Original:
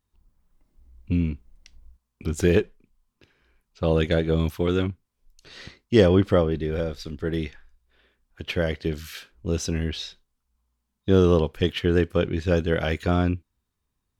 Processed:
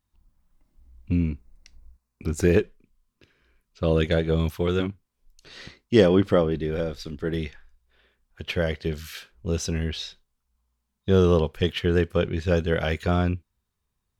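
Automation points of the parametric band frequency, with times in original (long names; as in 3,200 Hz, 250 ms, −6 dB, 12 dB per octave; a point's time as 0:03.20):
parametric band −11.5 dB 0.21 octaves
430 Hz
from 0:01.11 3,200 Hz
from 0:02.59 820 Hz
from 0:04.05 280 Hz
from 0:04.80 90 Hz
from 0:07.34 290 Hz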